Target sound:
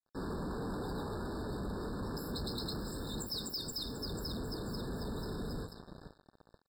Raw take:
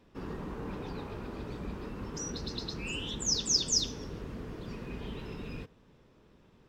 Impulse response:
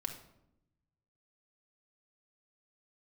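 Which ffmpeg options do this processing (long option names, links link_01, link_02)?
-filter_complex "[0:a]bandreject=frequency=57.05:width_type=h:width=4,bandreject=frequency=114.1:width_type=h:width=4,bandreject=frequency=171.15:width_type=h:width=4,asplit=2[link_01][link_02];[link_02]aecho=0:1:489|978|1467|1956:0.178|0.0836|0.0393|0.0185[link_03];[link_01][link_03]amix=inputs=2:normalize=0,acrusher=bits=7:mix=0:aa=0.5,alimiter=limit=-23dB:level=0:latency=1:release=383,asoftclip=type=tanh:threshold=-39.5dB,afftfilt=real='re*eq(mod(floor(b*sr/1024/1800),2),0)':imag='im*eq(mod(floor(b*sr/1024/1800),2),0)':win_size=1024:overlap=0.75,volume=5dB"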